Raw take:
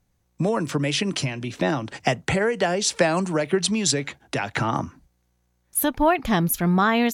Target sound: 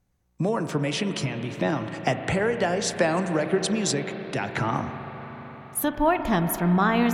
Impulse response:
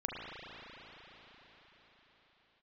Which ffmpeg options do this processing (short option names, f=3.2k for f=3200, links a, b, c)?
-filter_complex "[0:a]asplit=2[a][b];[1:a]atrim=start_sample=2205,lowpass=2.7k[c];[b][c]afir=irnorm=-1:irlink=0,volume=-7dB[d];[a][d]amix=inputs=2:normalize=0,volume=-5dB"